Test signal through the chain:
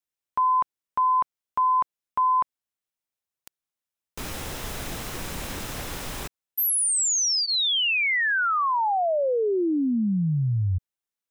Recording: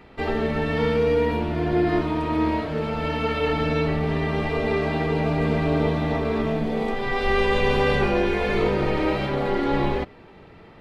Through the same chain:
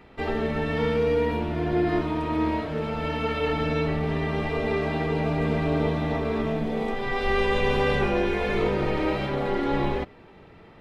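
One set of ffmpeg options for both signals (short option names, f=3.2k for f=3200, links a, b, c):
-af "bandreject=f=4.5k:w=18,volume=-2.5dB"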